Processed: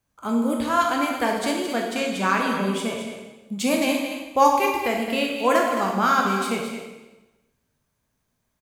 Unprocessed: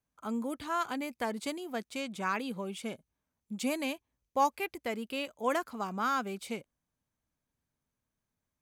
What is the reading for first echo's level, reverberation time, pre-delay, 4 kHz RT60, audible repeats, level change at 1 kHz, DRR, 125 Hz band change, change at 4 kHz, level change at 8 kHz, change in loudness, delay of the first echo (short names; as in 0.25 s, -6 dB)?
-9.5 dB, 1.1 s, 7 ms, 1.0 s, 1, +12.0 dB, -0.5 dB, +13.0 dB, +12.5 dB, +12.0 dB, +12.0 dB, 0.218 s